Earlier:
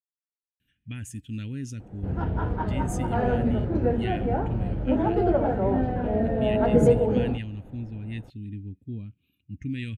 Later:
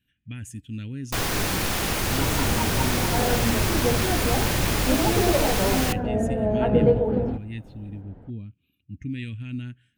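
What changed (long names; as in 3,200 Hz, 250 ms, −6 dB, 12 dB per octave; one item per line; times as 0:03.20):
speech: entry −0.60 s
first sound: unmuted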